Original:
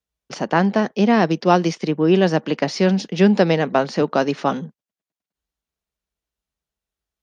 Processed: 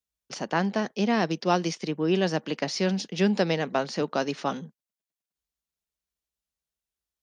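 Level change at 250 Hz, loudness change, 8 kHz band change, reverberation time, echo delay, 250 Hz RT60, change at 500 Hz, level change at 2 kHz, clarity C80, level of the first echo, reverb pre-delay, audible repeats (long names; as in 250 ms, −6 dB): −9.0 dB, −8.5 dB, can't be measured, no reverb audible, no echo audible, no reverb audible, −9.0 dB, −6.5 dB, no reverb audible, no echo audible, no reverb audible, no echo audible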